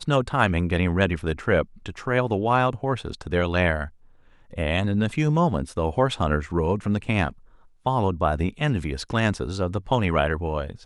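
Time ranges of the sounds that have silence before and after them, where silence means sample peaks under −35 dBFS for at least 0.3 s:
0:04.53–0:07.32

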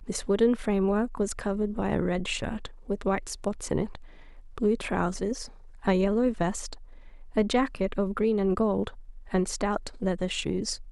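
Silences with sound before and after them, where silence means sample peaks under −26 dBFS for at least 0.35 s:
0:03.95–0:04.58
0:05.41–0:05.87
0:06.73–0:07.37
0:08.88–0:09.34

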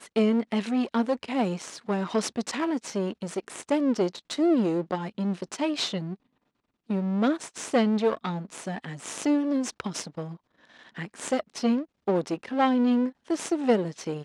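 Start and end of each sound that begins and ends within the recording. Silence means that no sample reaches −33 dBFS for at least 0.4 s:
0:06.90–0:10.34

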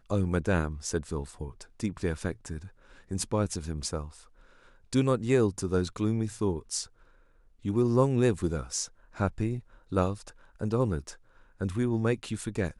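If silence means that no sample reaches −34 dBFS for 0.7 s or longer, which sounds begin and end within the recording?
0:04.93–0:06.83

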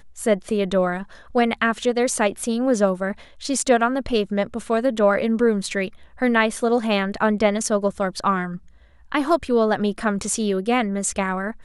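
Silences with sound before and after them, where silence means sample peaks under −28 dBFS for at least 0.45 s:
0:08.56–0:09.12

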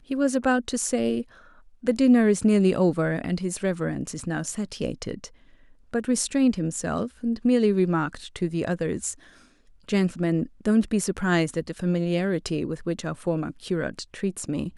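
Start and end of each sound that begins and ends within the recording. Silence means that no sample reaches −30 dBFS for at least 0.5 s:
0:01.87–0:05.25
0:05.94–0:09.12

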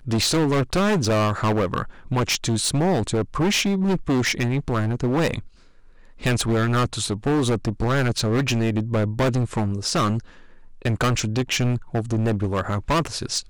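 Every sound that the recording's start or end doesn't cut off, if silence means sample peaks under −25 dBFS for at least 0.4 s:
0:06.23–0:10.19

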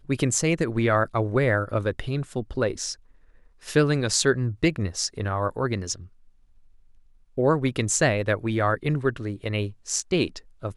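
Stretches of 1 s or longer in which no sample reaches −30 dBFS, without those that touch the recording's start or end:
0:05.93–0:07.38

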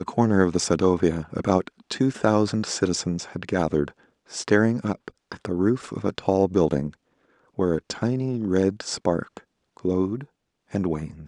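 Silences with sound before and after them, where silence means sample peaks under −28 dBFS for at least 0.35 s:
0:03.88–0:04.34
0:06.89–0:07.59
0:09.37–0:09.85
0:10.23–0:10.74

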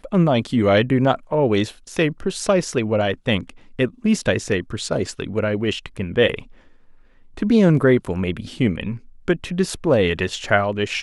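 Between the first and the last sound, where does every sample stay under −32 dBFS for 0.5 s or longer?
0:06.43–0:07.37

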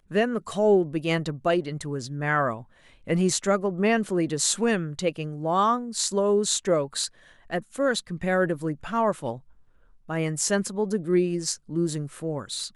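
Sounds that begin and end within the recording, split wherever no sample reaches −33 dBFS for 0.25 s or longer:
0:03.07–0:07.07
0:07.52–0:09.36

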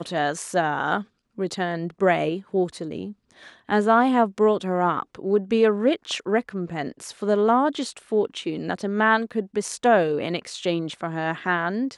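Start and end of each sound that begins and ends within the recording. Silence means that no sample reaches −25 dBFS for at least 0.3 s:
0:01.39–0:03.05

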